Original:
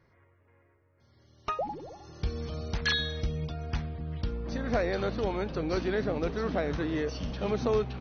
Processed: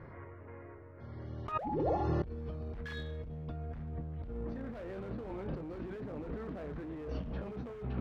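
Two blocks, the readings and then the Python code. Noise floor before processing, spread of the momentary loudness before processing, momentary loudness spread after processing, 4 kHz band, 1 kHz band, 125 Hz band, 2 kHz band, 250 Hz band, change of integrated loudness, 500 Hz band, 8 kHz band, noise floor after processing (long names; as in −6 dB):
−66 dBFS, 9 LU, 16 LU, −21.0 dB, −4.5 dB, −4.5 dB, −14.5 dB, −6.5 dB, −8.0 dB, −9.0 dB, can't be measured, −50 dBFS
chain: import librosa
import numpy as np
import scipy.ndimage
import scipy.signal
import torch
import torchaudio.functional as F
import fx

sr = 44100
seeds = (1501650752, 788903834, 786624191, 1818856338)

p1 = fx.doubler(x, sr, ms=26.0, db=-10.5)
p2 = fx.dynamic_eq(p1, sr, hz=880.0, q=1.1, threshold_db=-45.0, ratio=4.0, max_db=-4)
p3 = scipy.signal.sosfilt(scipy.signal.butter(2, 1500.0, 'lowpass', fs=sr, output='sos'), p2)
p4 = 10.0 ** (-30.5 / 20.0) * (np.abs((p3 / 10.0 ** (-30.5 / 20.0) + 3.0) % 4.0 - 2.0) - 1.0)
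p5 = p3 + (p4 * 10.0 ** (-4.0 / 20.0))
p6 = fx.over_compress(p5, sr, threshold_db=-41.0, ratio=-1.0)
y = p6 * 10.0 ** (1.5 / 20.0)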